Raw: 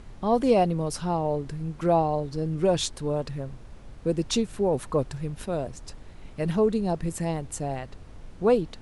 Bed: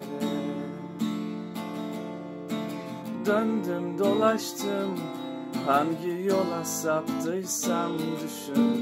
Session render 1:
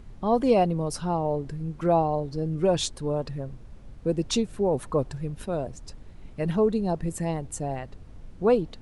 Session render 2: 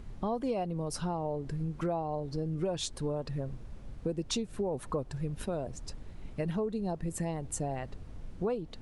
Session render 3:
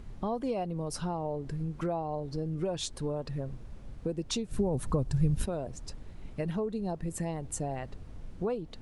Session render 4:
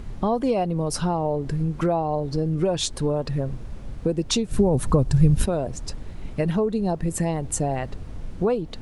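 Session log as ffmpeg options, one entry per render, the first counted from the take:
-af "afftdn=nr=6:nf=-46"
-af "acompressor=threshold=0.0316:ratio=6"
-filter_complex "[0:a]asettb=1/sr,asplit=3[s0][s1][s2];[s0]atrim=end=4.514[s3];[s1]atrim=start=4.51:end=5.46,asetpts=PTS-STARTPTS,afade=t=in:d=0.004:c=qsin,afade=t=out:st=0.946:d=0.004:c=qsin,bass=f=250:g=11,treble=f=4000:g=6[s4];[s2]atrim=start=5.456[s5];[s3][s4]acrossfade=d=0.004:c1=hsin:c2=qsin[s6];[s6][s5]acrossfade=d=0.004:c1=qsin:c2=hsin"
-af "volume=3.16"

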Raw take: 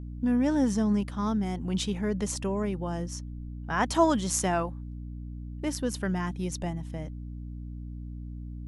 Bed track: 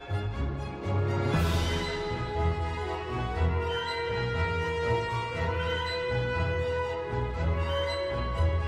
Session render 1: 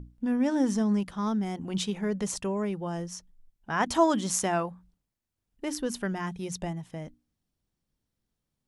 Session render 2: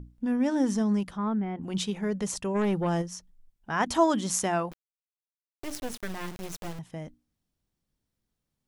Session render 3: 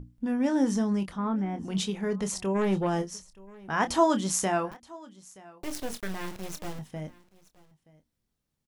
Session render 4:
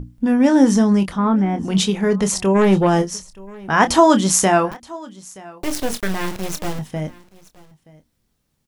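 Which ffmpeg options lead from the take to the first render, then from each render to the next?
-af "bandreject=f=60:t=h:w=6,bandreject=f=120:t=h:w=6,bandreject=f=180:t=h:w=6,bandreject=f=240:t=h:w=6,bandreject=f=300:t=h:w=6"
-filter_complex "[0:a]asplit=3[s0][s1][s2];[s0]afade=t=out:st=1.16:d=0.02[s3];[s1]lowpass=f=2500:w=0.5412,lowpass=f=2500:w=1.3066,afade=t=in:st=1.16:d=0.02,afade=t=out:st=1.62:d=0.02[s4];[s2]afade=t=in:st=1.62:d=0.02[s5];[s3][s4][s5]amix=inputs=3:normalize=0,asplit=3[s6][s7][s8];[s6]afade=t=out:st=2.54:d=0.02[s9];[s7]aeval=exprs='0.0794*sin(PI/2*1.58*val(0)/0.0794)':c=same,afade=t=in:st=2.54:d=0.02,afade=t=out:st=3.01:d=0.02[s10];[s8]afade=t=in:st=3.01:d=0.02[s11];[s9][s10][s11]amix=inputs=3:normalize=0,asettb=1/sr,asplit=3[s12][s13][s14];[s12]atrim=end=4.714[s15];[s13]atrim=start=4.71:end=6.79,asetpts=PTS-STARTPTS,afade=t=in:d=0.004:c=qsin,afade=t=out:st=2.076:d=0.004:c=qsin,acrusher=bits=4:dc=4:mix=0:aa=0.000001[s16];[s14]atrim=start=6.786[s17];[s15][s16]acrossfade=d=0.004:c1=hsin:c2=qsin[s18];[s18][s17]acrossfade=d=0.004:c1=qsin:c2=hsin"
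-filter_complex "[0:a]asplit=2[s0][s1];[s1]adelay=26,volume=0.335[s2];[s0][s2]amix=inputs=2:normalize=0,aecho=1:1:925:0.075"
-af "volume=3.98,alimiter=limit=0.891:level=0:latency=1"

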